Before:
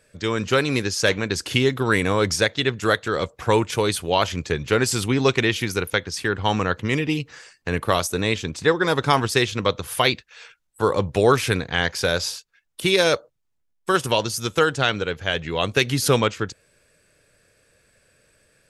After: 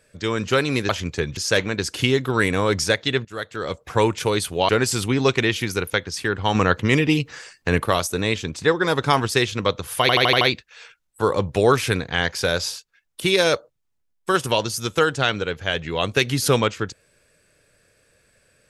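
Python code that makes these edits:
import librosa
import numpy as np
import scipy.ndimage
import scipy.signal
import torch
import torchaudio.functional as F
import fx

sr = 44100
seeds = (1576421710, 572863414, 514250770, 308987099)

y = fx.edit(x, sr, fx.fade_in_from(start_s=2.77, length_s=0.67, floor_db=-19.5),
    fx.move(start_s=4.21, length_s=0.48, to_s=0.89),
    fx.clip_gain(start_s=6.55, length_s=1.31, db=4.5),
    fx.stutter(start_s=10.01, slice_s=0.08, count=6), tone=tone)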